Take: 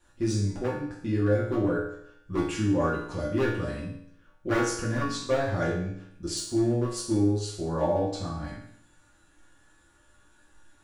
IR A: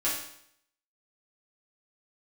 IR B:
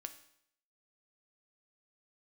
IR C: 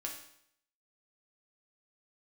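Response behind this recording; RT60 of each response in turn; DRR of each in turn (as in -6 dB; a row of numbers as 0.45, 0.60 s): A; 0.70, 0.70, 0.70 s; -9.0, 7.5, -1.0 dB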